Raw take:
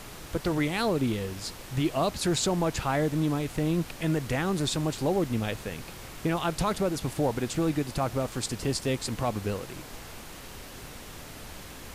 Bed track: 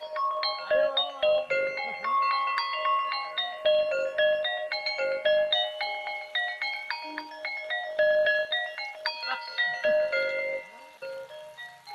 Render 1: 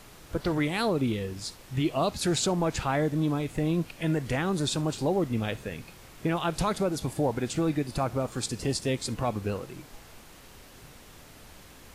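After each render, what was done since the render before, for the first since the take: noise print and reduce 7 dB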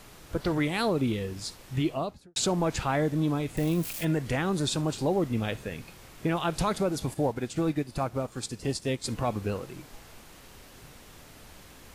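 1.76–2.36 studio fade out; 3.57–4.05 switching spikes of -29 dBFS; 7.14–9.04 upward expander, over -38 dBFS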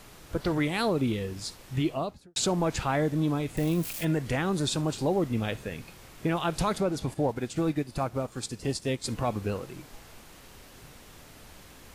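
6.8–7.29 high shelf 7800 Hz -8.5 dB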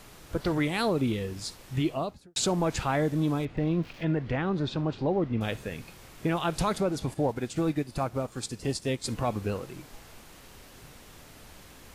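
3.45–5.41 air absorption 270 m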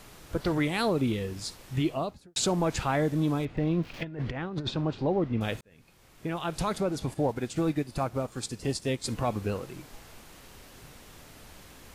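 3.93–4.71 negative-ratio compressor -32 dBFS, ratio -0.5; 5.61–7.49 fade in equal-power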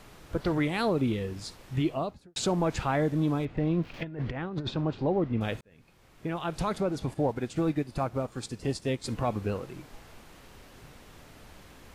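high shelf 4400 Hz -7.5 dB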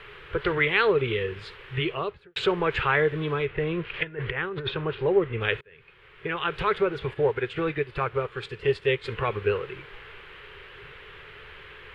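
EQ curve 140 Hz 0 dB, 270 Hz -16 dB, 410 Hz +12 dB, 680 Hz -6 dB, 1000 Hz +5 dB, 1600 Hz +13 dB, 3100 Hz +12 dB, 5900 Hz -17 dB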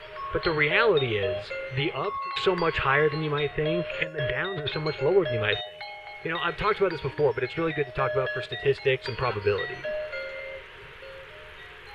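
add bed track -7.5 dB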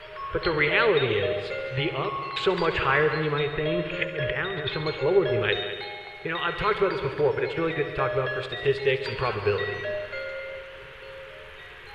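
multi-head echo 69 ms, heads all three, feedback 56%, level -15 dB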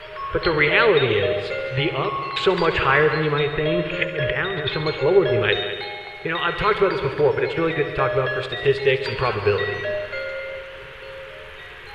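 gain +5 dB

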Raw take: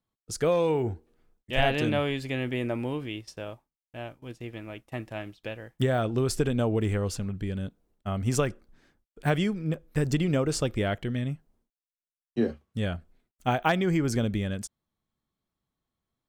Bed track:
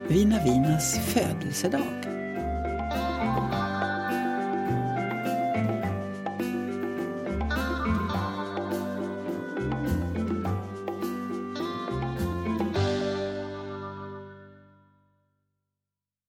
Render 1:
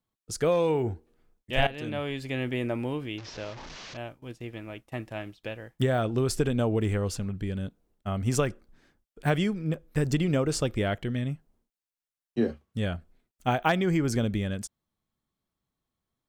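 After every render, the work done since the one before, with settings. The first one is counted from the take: 1.67–2.41 fade in, from -15 dB; 3.18–3.97 delta modulation 32 kbps, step -36.5 dBFS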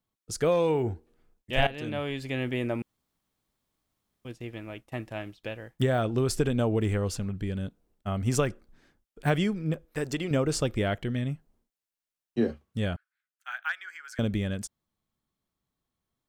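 2.82–4.25 room tone; 9.85–10.31 tone controls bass -12 dB, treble -1 dB; 12.96–14.19 ladder high-pass 1400 Hz, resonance 70%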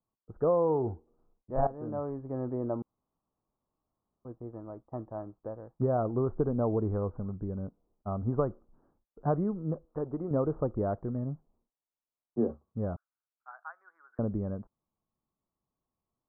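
steep low-pass 1200 Hz 48 dB/oct; low shelf 340 Hz -5 dB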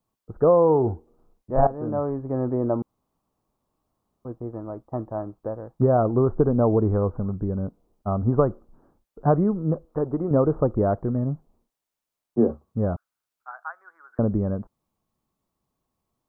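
gain +9 dB

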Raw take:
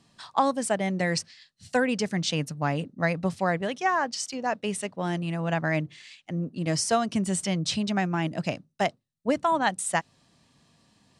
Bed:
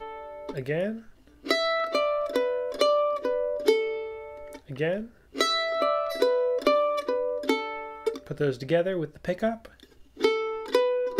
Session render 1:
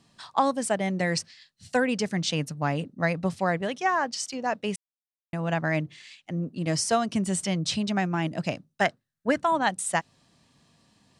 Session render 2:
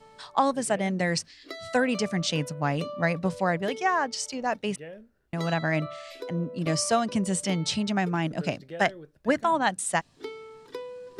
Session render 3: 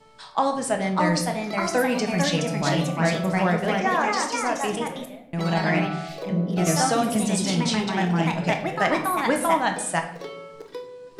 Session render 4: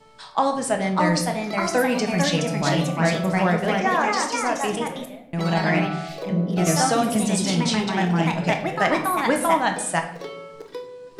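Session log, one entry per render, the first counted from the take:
4.76–5.33 mute; 8.81–9.41 bell 1600 Hz +12.5 dB 0.52 oct
add bed -15 dB
echoes that change speed 0.639 s, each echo +2 st, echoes 2; shoebox room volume 180 m³, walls mixed, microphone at 0.61 m
gain +1.5 dB

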